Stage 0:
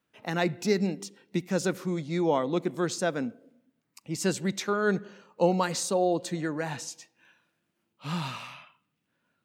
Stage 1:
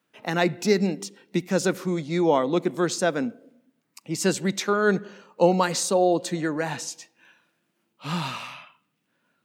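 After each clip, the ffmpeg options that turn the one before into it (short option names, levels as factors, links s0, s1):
-af "highpass=150,volume=1.78"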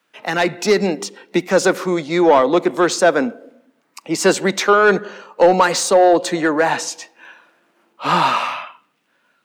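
-filter_complex "[0:a]asplit=2[s0][s1];[s1]highpass=f=720:p=1,volume=7.08,asoftclip=type=tanh:threshold=0.531[s2];[s0][s2]amix=inputs=2:normalize=0,lowpass=f=6100:p=1,volume=0.501,acrossover=split=230|1500[s3][s4][s5];[s4]dynaudnorm=f=110:g=13:m=3.76[s6];[s3][s6][s5]amix=inputs=3:normalize=0,volume=0.891"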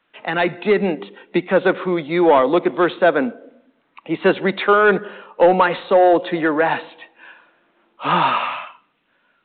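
-af "volume=0.891" -ar 8000 -c:a pcm_alaw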